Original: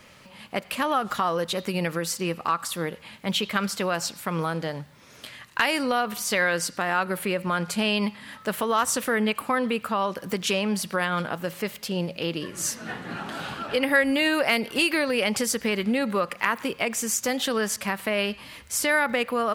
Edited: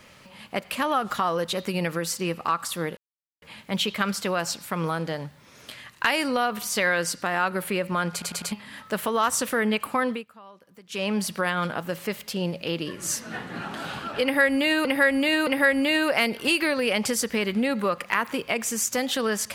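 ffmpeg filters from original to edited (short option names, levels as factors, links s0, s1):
-filter_complex "[0:a]asplit=10[s0][s1][s2][s3][s4][s5][s6][s7][s8][s9];[s0]atrim=end=2.97,asetpts=PTS-STARTPTS,afade=t=out:st=2.966:d=0.004:c=hsin,apad=pad_dur=0.45[s10];[s1]atrim=start=2.97:end=7.772,asetpts=PTS-STARTPTS,afade=t=in:d=0.004:c=hsin[s11];[s2]atrim=start=7.668:end=7.772[s12];[s3]atrim=start=7.668:end=7.772[s13];[s4]atrim=start=7.668:end=7.772[s14];[s5]atrim=start=8.068:end=9.8,asetpts=PTS-STARTPTS,afade=t=out:st=1.552:d=0.18:silence=0.0794328[s15];[s6]atrim=start=9.8:end=10.44,asetpts=PTS-STARTPTS,volume=0.0794[s16];[s7]atrim=start=10.44:end=14.402,asetpts=PTS-STARTPTS,afade=t=in:d=0.18:silence=0.0794328[s17];[s8]atrim=start=13.778:end=14.402[s18];[s9]atrim=start=13.778[s19];[s10][s11]concat=n=2:v=0:a=1[s20];[s20][s12]acrossfade=d=0.004:c1=hsin:c2=hsin[s21];[s21][s13]acrossfade=d=0.004:c1=hsin:c2=hsin[s22];[s22][s14]acrossfade=d=0.004:c1=hsin:c2=hsin[s23];[s15][s16][s17]concat=n=3:v=0:a=1[s24];[s23][s24]acrossfade=d=0.004:c1=hsin:c2=hsin[s25];[s25][s18]acrossfade=d=0.004:c1=hsin:c2=hsin[s26];[s26][s19]acrossfade=d=0.004:c1=hsin:c2=hsin"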